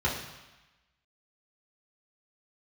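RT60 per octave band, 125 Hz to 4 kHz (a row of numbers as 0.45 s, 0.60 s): 1.0 s, 1.0 s, 0.95 s, 1.2 s, 1.2 s, 1.1 s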